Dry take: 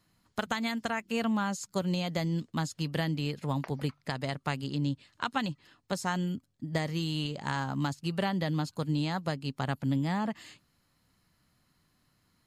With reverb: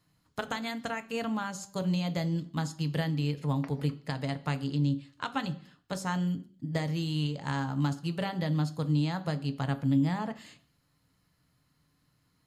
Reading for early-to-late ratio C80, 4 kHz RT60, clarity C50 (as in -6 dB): 20.0 dB, 0.65 s, 16.5 dB